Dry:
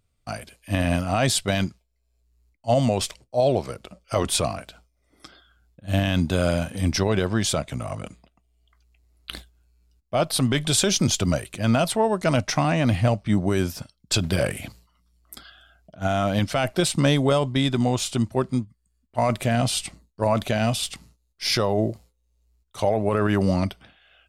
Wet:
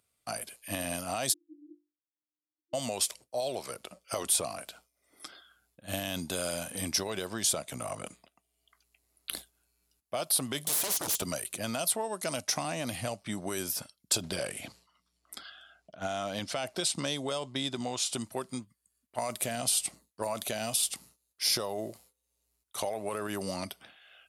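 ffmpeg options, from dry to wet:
-filter_complex "[0:a]asplit=3[a][b][c];[a]afade=t=out:st=1.32:d=0.02[d];[b]asuperpass=centerf=320:order=20:qfactor=6.3,afade=t=in:st=1.32:d=0.02,afade=t=out:st=2.73:d=0.02[e];[c]afade=t=in:st=2.73:d=0.02[f];[d][e][f]amix=inputs=3:normalize=0,asettb=1/sr,asplit=3[g][h][i];[g]atrim=end=10.664[j];[h]atrim=start=10.66:end=11.22,asetpts=PTS-STARTPTS,afade=t=in:d=0.004:c=qsin,afade=t=out:st=0.556:d=0.004:c=qsin,aeval=exprs='0.0562*(abs(mod(val(0)/0.0562+3,4)-2)-1)':c=same[k];[i]atrim=start=11.216[l];[j][k]acrossfade=d=0.004:c1=hsin:c2=qsin[m];[m][l]acrossfade=d=0.004:c1=qsin:c2=hsin,asettb=1/sr,asplit=3[n][o][p];[n]atrim=end=14.214[q];[o]atrim=start=14.21:end=18.13,asetpts=PTS-STARTPTS,afade=t=in:d=0.004:c=qsin,afade=t=out:st=3.916:d=0.004:c=qsin,lowpass=6.2k[r];[p]atrim=start=18.126[s];[q][r]acrossfade=d=0.004:c1=hsin:c2=qsin[t];[t][s]acrossfade=d=0.004:c1=qsin:c2=hsin,highpass=f=540:p=1,equalizer=f=11k:t=o:w=0.61:g=11,acrossover=split=970|3900[u][v][w];[u]acompressor=threshold=-34dB:ratio=4[x];[v]acompressor=threshold=-44dB:ratio=4[y];[w]acompressor=threshold=-25dB:ratio=4[z];[x][y][z]amix=inputs=3:normalize=0"

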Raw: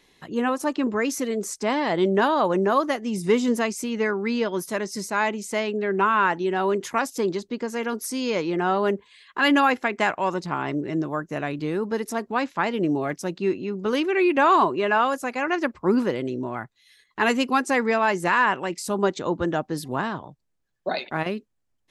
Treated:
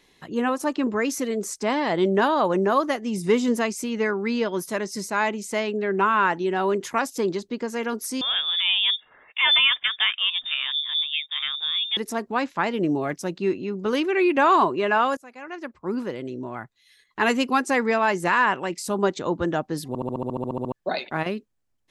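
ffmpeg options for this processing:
-filter_complex "[0:a]asettb=1/sr,asplit=3[a][b][c];[a]atrim=end=8.214[d];[b]atrim=start=8.21:end=11.97,asetpts=PTS-STARTPTS,afade=t=in:d=0.004:c=qsin,afade=t=out:st=3.756:d=0.004:c=qsin,lowpass=f=3.2k:t=q:w=0.5098,lowpass=f=3.2k:t=q:w=0.6013,lowpass=f=3.2k:t=q:w=0.9,lowpass=f=3.2k:t=q:w=2.563,afreqshift=-3800[e];[c]atrim=start=11.966[f];[d][e]acrossfade=d=0.004:c1=hsin:c2=qsin[g];[g][f]acrossfade=d=0.004:c1=qsin:c2=hsin,asplit=14[h][i][j][k][l][m][n][o][p][q][r][s][t][u];[h]atrim=end=15.17,asetpts=PTS-STARTPTS,afade=t=out:st=15.166:d=0.004:c=hsin:silence=0.105925[v];[i]atrim=start=15.17:end=19.952,asetpts=PTS-STARTPTS,afade=t=in:d=2.04:silence=0.105925[w];[j]atrim=start=19.878:end=19.952[x];[k]atrim=start=19.878:end=19.952[y];[l]atrim=start=19.878:end=19.952[z];[m]atrim=start=19.878:end=19.952[aa];[n]atrim=start=19.878:end=19.952[ab];[o]atrim=start=19.878:end=19.952[ac];[p]atrim=start=19.878:end=19.952[ad];[q]atrim=start=19.878:end=19.952[ae];[r]atrim=start=19.878:end=19.952[af];[s]atrim=start=19.878:end=19.952[ag];[t]atrim=start=19.878:end=19.952[ah];[u]atrim=start=20.718[ai];[v][w]concat=n=2:v=0:a=1[aj];[aj][x]acrossfade=d=0.004:c1=hsin:c2=hsin[ak];[ak][y]acrossfade=d=0.004:c1=hsin:c2=hsin[al];[al][z]acrossfade=d=0.004:c1=hsin:c2=hsin[am];[am][aa]acrossfade=d=0.004:c1=hsin:c2=hsin[an];[an][ab]acrossfade=d=0.004:c1=hsin:c2=hsin[ao];[ao][ac]acrossfade=d=0.004:c1=hsin:c2=hsin[ap];[ap][ad]acrossfade=d=0.004:c1=hsin:c2=hsin[aq];[aq][ae]acrossfade=d=0.004:c1=hsin:c2=hsin[ar];[ar][af]acrossfade=d=0.004:c1=hsin:c2=hsin[as];[as][ag]acrossfade=d=0.004:c1=hsin:c2=hsin[at];[at][ah]acrossfade=d=0.004:c1=hsin:c2=hsin[au];[au][ai]acrossfade=d=0.004:c1=hsin:c2=hsin"

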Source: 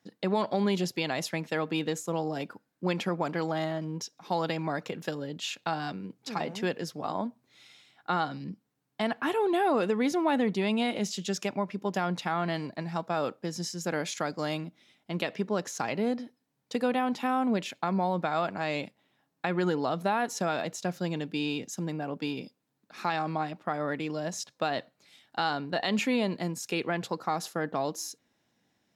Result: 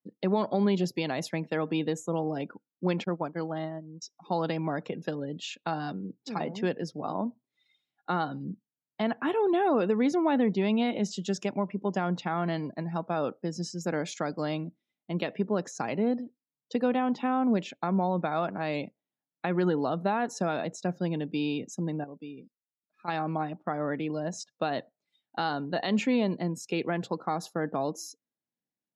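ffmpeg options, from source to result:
-filter_complex "[0:a]asettb=1/sr,asplit=3[a][b][c];[a]atrim=end=3.044[d];[b]atrim=start=3.04:end=4.02,asetpts=PTS-STARTPTS,afade=t=in:d=0.004:c=qsin,afade=t=out:st=0.976:d=0.004:c=qsin,agate=range=-33dB:threshold=-27dB:ratio=3:release=100:detection=peak[e];[c]atrim=start=4.016[f];[d][e]acrossfade=d=0.004:c1=hsin:c2=qsin[g];[g][f]acrossfade=d=0.004:c1=qsin:c2=hsin,asplit=3[h][i][j];[h]atrim=end=22.042[k];[i]atrim=start=22.038:end=23.082,asetpts=PTS-STARTPTS,volume=-10.5dB[l];[j]atrim=start=23.078[m];[k][l]acrossfade=d=0.004:c1=hsin:c2=hsin[n];[n][m]acrossfade=d=0.004:c1=hsin:c2=hsin,highpass=120,afftdn=nr=24:nf=-47,tiltshelf=f=660:g=3.5"

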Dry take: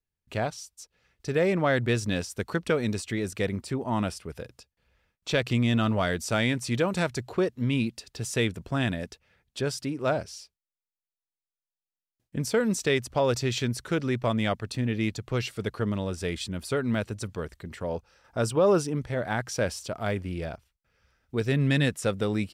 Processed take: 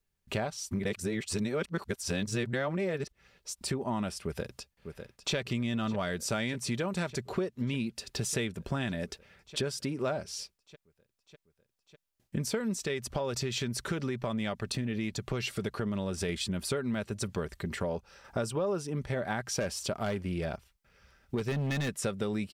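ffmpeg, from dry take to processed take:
-filter_complex "[0:a]asplit=2[a][b];[b]afade=t=in:st=4.24:d=0.01,afade=t=out:st=5.35:d=0.01,aecho=0:1:600|1200|1800|2400|3000|3600|4200|4800|5400|6000|6600|7200:0.251189|0.188391|0.141294|0.10597|0.0794777|0.0596082|0.0447062|0.0335296|0.0251472|0.0188604|0.0141453|0.010609[c];[a][c]amix=inputs=2:normalize=0,asettb=1/sr,asplit=3[d][e][f];[d]atrim=end=12.814[g];[e]atrim=start=12.81:end=16.29,asetpts=PTS-STARTPTS,afade=t=in:d=0.004:c=qsin,afade=t=out:st=3.476:d=0.004:c=qsin,acompressor=threshold=-30dB:ratio=2:attack=3.2:release=140:knee=1:detection=peak[h];[f]atrim=start=16.286[i];[g][h]acrossfade=d=0.004:c1=hsin:c2=qsin[j];[j][i]acrossfade=d=0.004:c1=qsin:c2=hsin,asettb=1/sr,asplit=3[k][l][m];[k]atrim=end=19.604[n];[l]atrim=start=19.6:end=21.89,asetpts=PTS-STARTPTS,afade=t=in:d=0.004:c=qsin,afade=t=out:st=2.286:d=0.004:c=qsin,asoftclip=type=hard:threshold=-23dB[o];[m]atrim=start=21.886[p];[n][o]acrossfade=d=0.004:c1=hsin:c2=qsin[q];[q][p]acrossfade=d=0.004:c1=qsin:c2=hsin,asplit=3[r][s][t];[r]atrim=end=0.712[u];[s]atrim=start=0.708:end=3.612,asetpts=PTS-STARTPTS,areverse[v];[t]atrim=start=3.608[w];[u][v]acrossfade=d=0.004:c1=hsin:c2=hsin[x];[x][w]acrossfade=d=0.004:c1=hsin:c2=hsin,aecho=1:1:5.1:0.3,acompressor=threshold=-36dB:ratio=6,volume=6dB"

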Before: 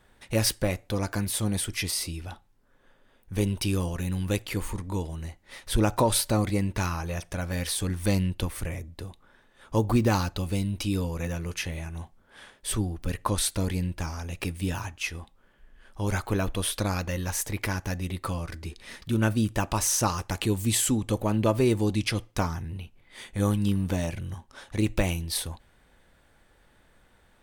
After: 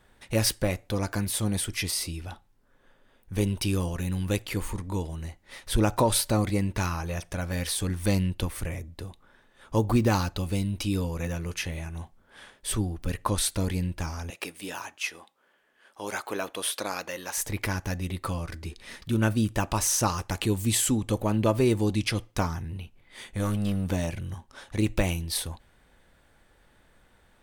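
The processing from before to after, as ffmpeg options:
-filter_complex "[0:a]asettb=1/sr,asplit=3[a][b][c];[a]atrim=end=14.304[d];[b]atrim=start=14.3:end=17.38,asetpts=PTS-STARTPTS,afade=t=in:d=0.004:c=qsin,afade=t=out:st=3.076:d=0.004:c=qsin,highpass=400[e];[c]atrim=start=17.376[f];[d][e]acrossfade=d=0.004:c1=hsin:c2=qsin[g];[g][f]acrossfade=d=0.004:c1=qsin:c2=hsin,asettb=1/sr,asplit=3[h][i][j];[h]atrim=end=22.474[k];[i]atrim=start=22.47:end=23.89,asetpts=PTS-STARTPTS,afade=t=in:d=0.004:c=qsin,afade=t=out:st=1.416:d=0.004:c=qsin,asoftclip=type=hard:threshold=-22.5dB[l];[j]atrim=start=23.886[m];[k][l]acrossfade=d=0.004:c1=hsin:c2=qsin[n];[n][m]acrossfade=d=0.004:c1=qsin:c2=hsin"

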